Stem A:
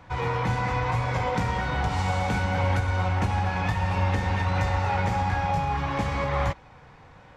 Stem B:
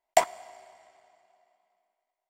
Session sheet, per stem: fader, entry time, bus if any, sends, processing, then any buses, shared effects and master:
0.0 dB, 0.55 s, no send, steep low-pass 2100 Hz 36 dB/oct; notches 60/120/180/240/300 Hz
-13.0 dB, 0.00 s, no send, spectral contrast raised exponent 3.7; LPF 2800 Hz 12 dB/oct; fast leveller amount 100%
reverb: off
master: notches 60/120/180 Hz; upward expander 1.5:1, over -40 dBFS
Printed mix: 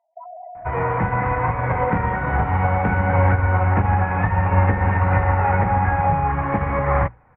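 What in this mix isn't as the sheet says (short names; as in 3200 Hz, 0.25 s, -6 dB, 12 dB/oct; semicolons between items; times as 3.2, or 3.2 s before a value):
stem A 0.0 dB -> +9.0 dB; master: missing notches 60/120/180 Hz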